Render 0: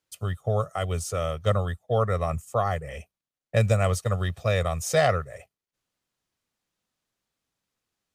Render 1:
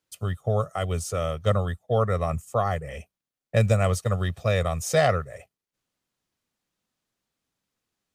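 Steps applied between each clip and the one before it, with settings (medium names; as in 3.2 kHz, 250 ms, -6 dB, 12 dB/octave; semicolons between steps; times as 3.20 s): peaking EQ 230 Hz +3 dB 1.5 oct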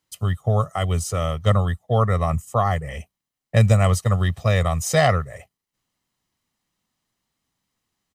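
comb 1 ms, depth 36%; trim +4 dB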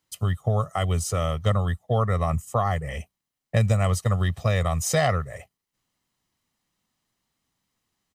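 compression 2:1, threshold -21 dBFS, peak gain reduction 6 dB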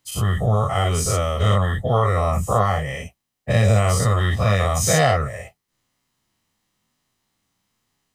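every event in the spectrogram widened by 120 ms; flange 1 Hz, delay 6.9 ms, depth 3.6 ms, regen -43%; trim +4.5 dB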